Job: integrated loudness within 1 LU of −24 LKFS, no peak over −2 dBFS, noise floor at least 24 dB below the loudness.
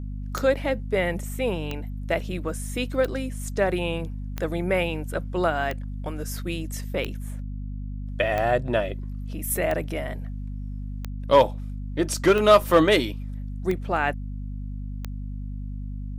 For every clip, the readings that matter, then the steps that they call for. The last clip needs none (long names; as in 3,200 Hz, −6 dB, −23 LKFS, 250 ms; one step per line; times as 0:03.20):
number of clicks 12; mains hum 50 Hz; hum harmonics up to 250 Hz; level of the hum −30 dBFS; integrated loudness −26.0 LKFS; sample peak −5.5 dBFS; target loudness −24.0 LKFS
→ click removal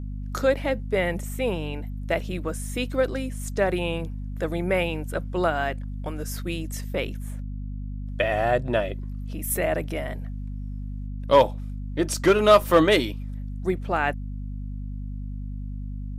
number of clicks 0; mains hum 50 Hz; hum harmonics up to 250 Hz; level of the hum −30 dBFS
→ mains-hum notches 50/100/150/200/250 Hz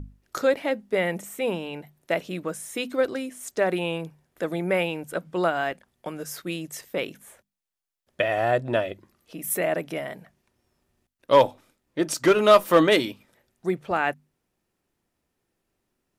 mains hum none found; integrated loudness −25.0 LKFS; sample peak −5.5 dBFS; target loudness −24.0 LKFS
→ level +1 dB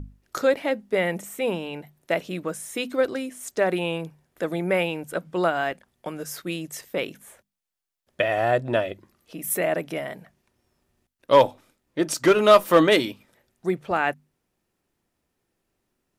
integrated loudness −24.0 LKFS; sample peak −4.5 dBFS; background noise floor −78 dBFS